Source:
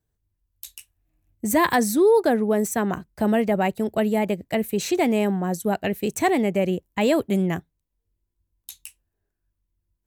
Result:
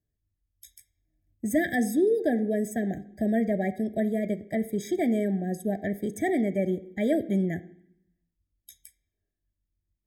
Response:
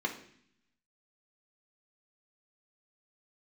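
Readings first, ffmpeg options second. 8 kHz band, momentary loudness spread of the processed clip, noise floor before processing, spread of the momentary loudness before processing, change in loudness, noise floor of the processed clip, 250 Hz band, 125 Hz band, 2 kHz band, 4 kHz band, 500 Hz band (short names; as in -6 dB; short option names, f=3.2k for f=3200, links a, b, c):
-11.0 dB, 6 LU, -79 dBFS, 10 LU, -5.0 dB, -83 dBFS, -3.5 dB, -4.0 dB, -6.5 dB, under -10 dB, -6.0 dB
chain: -filter_complex "[0:a]asplit=2[a][b];[1:a]atrim=start_sample=2205,lowshelf=f=84:g=-4[c];[b][c]afir=irnorm=-1:irlink=0,volume=-12.5dB[d];[a][d]amix=inputs=2:normalize=0,afftfilt=real='re*eq(mod(floor(b*sr/1024/780),2),0)':imag='im*eq(mod(floor(b*sr/1024/780),2),0)':win_size=1024:overlap=0.75,volume=-6dB"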